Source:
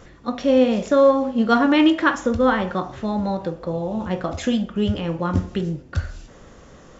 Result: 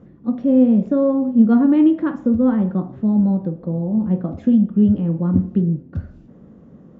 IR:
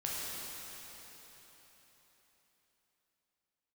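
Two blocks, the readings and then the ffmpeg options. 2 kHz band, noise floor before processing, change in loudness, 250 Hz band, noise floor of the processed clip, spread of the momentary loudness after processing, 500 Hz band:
under -15 dB, -47 dBFS, +3.0 dB, +6.0 dB, -46 dBFS, 9 LU, -4.5 dB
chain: -af "bandpass=f=200:t=q:w=2.1:csg=0,volume=9dB"

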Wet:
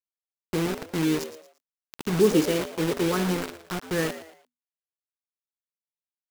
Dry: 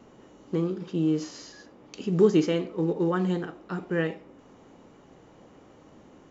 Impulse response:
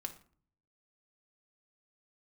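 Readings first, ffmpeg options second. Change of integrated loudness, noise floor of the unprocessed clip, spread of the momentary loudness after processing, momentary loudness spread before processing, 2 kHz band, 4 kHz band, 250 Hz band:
+0.5 dB, -55 dBFS, 14 LU, 17 LU, +4.5 dB, +7.0 dB, 0.0 dB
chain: -filter_complex "[0:a]equalizer=f=110:w=3.5:g=-8,acrusher=bits=4:mix=0:aa=0.000001,asplit=4[a][b][c][d];[b]adelay=114,afreqshift=81,volume=-13dB[e];[c]adelay=228,afreqshift=162,volume=-22.6dB[f];[d]adelay=342,afreqshift=243,volume=-32.3dB[g];[a][e][f][g]amix=inputs=4:normalize=0"

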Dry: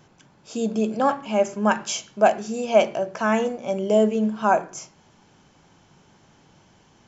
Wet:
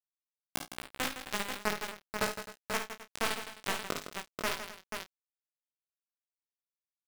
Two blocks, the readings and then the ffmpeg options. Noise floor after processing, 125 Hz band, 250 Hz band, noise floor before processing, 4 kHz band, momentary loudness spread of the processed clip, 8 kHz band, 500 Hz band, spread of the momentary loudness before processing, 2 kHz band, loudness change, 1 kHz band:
under -85 dBFS, -14.5 dB, -20.0 dB, -57 dBFS, -3.0 dB, 9 LU, n/a, -20.5 dB, 9 LU, -6.5 dB, -14.5 dB, -15.0 dB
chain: -filter_complex "[0:a]equalizer=f=250:w=6.8:g=4.5,bandreject=f=210:t=h:w=4,bandreject=f=420:t=h:w=4,bandreject=f=630:t=h:w=4,bandreject=f=840:t=h:w=4,bandreject=f=1.05k:t=h:w=4,bandreject=f=1.26k:t=h:w=4,bandreject=f=1.47k:t=h:w=4,bandreject=f=1.68k:t=h:w=4,bandreject=f=1.89k:t=h:w=4,bandreject=f=2.1k:t=h:w=4,bandreject=f=2.31k:t=h:w=4,bandreject=f=2.52k:t=h:w=4,bandreject=f=2.73k:t=h:w=4,bandreject=f=2.94k:t=h:w=4,bandreject=f=3.15k:t=h:w=4,bandreject=f=3.36k:t=h:w=4,bandreject=f=3.57k:t=h:w=4,bandreject=f=3.78k:t=h:w=4,bandreject=f=3.99k:t=h:w=4,bandreject=f=4.2k:t=h:w=4,bandreject=f=4.41k:t=h:w=4,bandreject=f=4.62k:t=h:w=4,bandreject=f=4.83k:t=h:w=4,bandreject=f=5.04k:t=h:w=4,bandreject=f=5.25k:t=h:w=4,bandreject=f=5.46k:t=h:w=4,bandreject=f=5.67k:t=h:w=4,bandreject=f=5.88k:t=h:w=4,bandreject=f=6.09k:t=h:w=4,bandreject=f=6.3k:t=h:w=4,bandreject=f=6.51k:t=h:w=4,bandreject=f=6.72k:t=h:w=4,acompressor=threshold=-31dB:ratio=10,asplit=2[a][b];[b]highpass=f=720:p=1,volume=32dB,asoftclip=type=tanh:threshold=-21.5dB[c];[a][c]amix=inputs=2:normalize=0,lowpass=f=3.7k:p=1,volume=-6dB,acrusher=bits=3:mix=0:aa=0.000001,flanger=delay=15:depth=4.8:speed=1.4,asplit=2[d][e];[e]adelay=30,volume=-12dB[f];[d][f]amix=inputs=2:normalize=0,asplit=2[g][h];[h]aecho=0:1:54|61|73|161|260|486:0.376|0.119|0.178|0.299|0.141|0.473[i];[g][i]amix=inputs=2:normalize=0,volume=3.5dB"

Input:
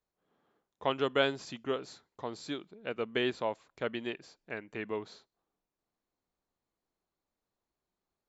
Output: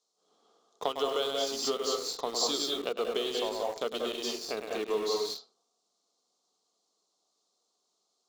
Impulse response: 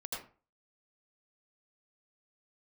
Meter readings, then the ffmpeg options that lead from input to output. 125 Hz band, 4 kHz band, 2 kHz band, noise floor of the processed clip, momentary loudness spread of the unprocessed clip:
under -10 dB, +8.5 dB, -5.5 dB, -79 dBFS, 13 LU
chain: -filter_complex "[0:a]asplit=2[a][b];[1:a]atrim=start_sample=2205,afade=t=out:st=0.34:d=0.01,atrim=end_sample=15435,adelay=102[c];[b][c]afir=irnorm=-1:irlink=0,volume=-1.5dB[d];[a][d]amix=inputs=2:normalize=0,acompressor=threshold=-37dB:ratio=10,highpass=f=190:w=0.5412,highpass=f=190:w=1.3066,equalizer=f=440:t=q:w=4:g=9,equalizer=f=710:t=q:w=4:g=7,equalizer=f=1.2k:t=q:w=4:g=9,equalizer=f=1.7k:t=q:w=4:g=-10,lowpass=f=6.8k:w=0.5412,lowpass=f=6.8k:w=1.3066,bandreject=f=50:t=h:w=6,bandreject=f=100:t=h:w=6,bandreject=f=150:t=h:w=6,bandreject=f=200:t=h:w=6,bandreject=f=250:t=h:w=6,bandreject=f=300:t=h:w=6,bandreject=f=350:t=h:w=6,bandreject=f=400:t=h:w=6,bandreject=f=450:t=h:w=6,bandreject=f=500:t=h:w=6,aexciter=amount=10.3:drive=3.6:freq=3.5k,asplit=2[e][f];[f]aeval=exprs='val(0)*gte(abs(val(0)),0.0119)':c=same,volume=-3.5dB[g];[e][g]amix=inputs=2:normalize=0"

